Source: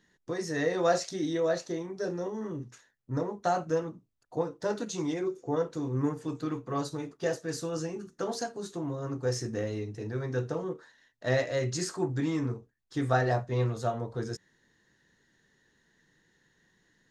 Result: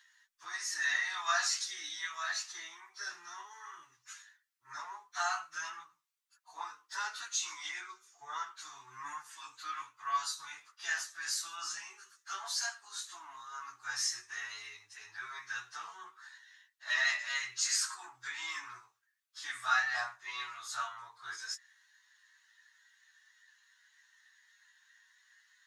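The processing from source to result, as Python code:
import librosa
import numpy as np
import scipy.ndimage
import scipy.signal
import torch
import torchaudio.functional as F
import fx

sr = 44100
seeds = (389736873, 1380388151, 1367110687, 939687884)

y = fx.stretch_vocoder_free(x, sr, factor=1.5)
y = scipy.signal.sosfilt(scipy.signal.cheby2(4, 40, 560.0, 'highpass', fs=sr, output='sos'), y)
y = y * 10.0 ** (7.5 / 20.0)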